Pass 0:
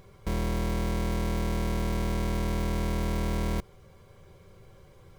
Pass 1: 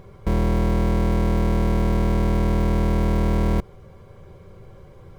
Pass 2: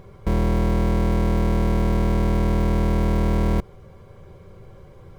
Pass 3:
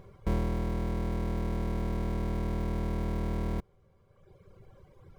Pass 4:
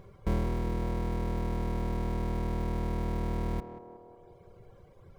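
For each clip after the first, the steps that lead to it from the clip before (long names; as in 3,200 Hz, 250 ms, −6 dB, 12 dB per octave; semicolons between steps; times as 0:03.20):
high-shelf EQ 2,100 Hz −11 dB; level +9 dB
no processing that can be heard
reverb reduction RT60 1.6 s; level −7 dB
feedback echo with a band-pass in the loop 184 ms, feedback 73%, band-pass 560 Hz, level −6.5 dB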